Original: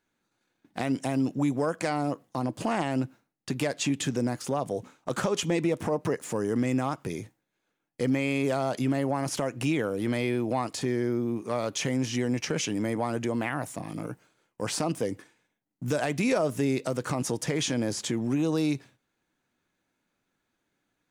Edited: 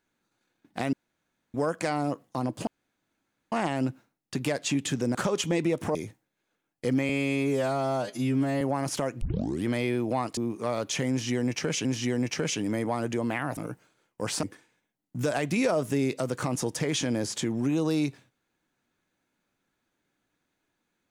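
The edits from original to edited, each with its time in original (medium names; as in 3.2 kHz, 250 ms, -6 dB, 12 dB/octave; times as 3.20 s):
0.93–1.54 s: room tone
2.67 s: insert room tone 0.85 s
4.30–5.14 s: delete
5.94–7.11 s: delete
8.25–9.01 s: stretch 2×
9.61 s: tape start 0.44 s
10.77–11.23 s: delete
11.96–12.71 s: loop, 2 plays
13.68–13.97 s: delete
14.83–15.10 s: delete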